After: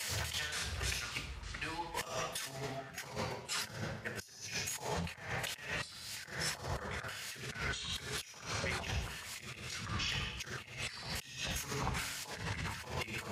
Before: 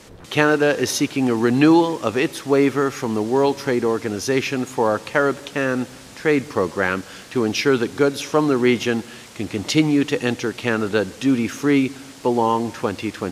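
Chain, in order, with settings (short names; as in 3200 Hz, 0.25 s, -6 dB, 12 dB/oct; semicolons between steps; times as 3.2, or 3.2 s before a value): flipped gate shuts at -13 dBFS, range -31 dB; high shelf 9300 Hz +9.5 dB; level quantiser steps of 15 dB; reverb RT60 0.90 s, pre-delay 3 ms, DRR -0.5 dB; echoes that change speed 0.521 s, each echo -4 st, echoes 3, each echo -6 dB; passive tone stack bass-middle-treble 10-0-10; negative-ratio compressor -48 dBFS, ratio -1; three-band expander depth 70%; gain +6 dB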